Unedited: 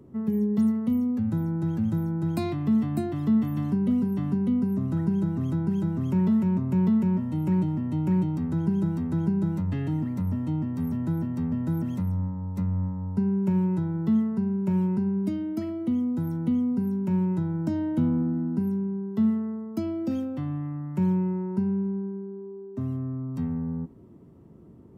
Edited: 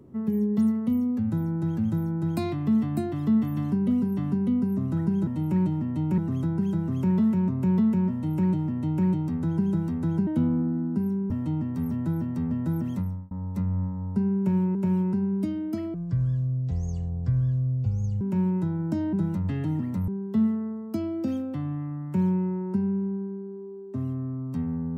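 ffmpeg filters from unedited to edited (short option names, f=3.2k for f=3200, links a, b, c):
-filter_complex "[0:a]asplit=11[a][b][c][d][e][f][g][h][i][j][k];[a]atrim=end=5.272[l];[b]atrim=start=7.228:end=8.142[m];[c]atrim=start=5.268:end=9.362[n];[d]atrim=start=17.878:end=18.912[o];[e]atrim=start=10.308:end=12.32,asetpts=PTS-STARTPTS,afade=t=out:st=1.692:d=0.32[p];[f]atrim=start=12.32:end=13.762,asetpts=PTS-STARTPTS,afade=t=in:d=0.004:c=hsin[q];[g]atrim=start=14.588:end=15.784[r];[h]atrim=start=15.78:end=16.96,asetpts=PTS-STARTPTS,asetrate=22932,aresample=44100,atrim=end_sample=100073,asetpts=PTS-STARTPTS[s];[i]atrim=start=16.956:end=17.882[t];[j]atrim=start=9.358:end=10.312[u];[k]atrim=start=18.908[v];[l][m]acrossfade=d=0.004:c1=hsin:c2=hsin[w];[w][n]acrossfade=d=0.004:c1=hsin:c2=hsin[x];[x][o]acrossfade=d=0.004:c1=hsin:c2=hsin[y];[p][q]concat=n=2:v=0:a=1[z];[y][z]acrossfade=d=0.004:c1=hsin:c2=hsin[aa];[aa][r]acrossfade=d=0.004:c1=hsin:c2=hsin[ab];[ab][s]acrossfade=d=0.004:c1=hsin:c2=hsin[ac];[ac][t]acrossfade=d=0.004:c1=hsin:c2=hsin[ad];[ad][u]acrossfade=d=0.004:c1=hsin:c2=hsin[ae];[ae][v]acrossfade=d=0.004:c1=hsin:c2=hsin"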